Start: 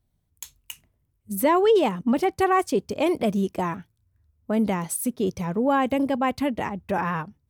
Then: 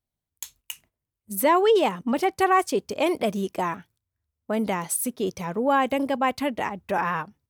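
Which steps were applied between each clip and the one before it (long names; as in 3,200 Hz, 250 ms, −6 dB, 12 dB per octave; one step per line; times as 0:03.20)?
noise gate −56 dBFS, range −10 dB
low-shelf EQ 280 Hz −11 dB
level +2.5 dB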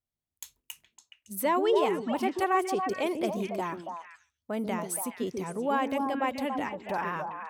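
echo through a band-pass that steps 140 ms, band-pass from 300 Hz, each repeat 1.4 octaves, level −0.5 dB
level −7 dB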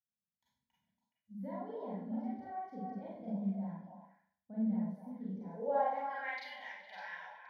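band-pass filter sweep 210 Hz → 3,000 Hz, 0:05.27–0:06.40
phaser with its sweep stopped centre 1,800 Hz, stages 8
convolution reverb RT60 0.55 s, pre-delay 32 ms, DRR −6.5 dB
level −5 dB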